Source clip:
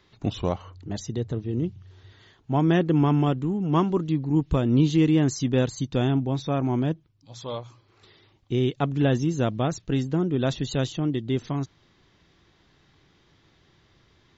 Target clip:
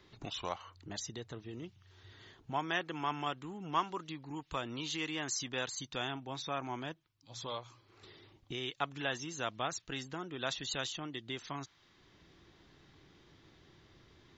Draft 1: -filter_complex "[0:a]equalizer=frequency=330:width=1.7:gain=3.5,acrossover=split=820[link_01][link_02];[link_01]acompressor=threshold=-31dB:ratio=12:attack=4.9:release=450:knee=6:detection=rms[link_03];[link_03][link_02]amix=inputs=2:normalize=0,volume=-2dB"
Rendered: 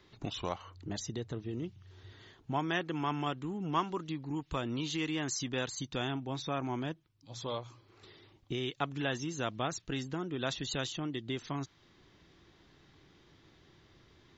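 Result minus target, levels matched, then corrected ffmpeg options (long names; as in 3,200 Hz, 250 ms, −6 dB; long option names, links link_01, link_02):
downward compressor: peak gain reduction −8 dB
-filter_complex "[0:a]equalizer=frequency=330:width=1.7:gain=3.5,acrossover=split=820[link_01][link_02];[link_01]acompressor=threshold=-39.5dB:ratio=12:attack=4.9:release=450:knee=6:detection=rms[link_03];[link_03][link_02]amix=inputs=2:normalize=0,volume=-2dB"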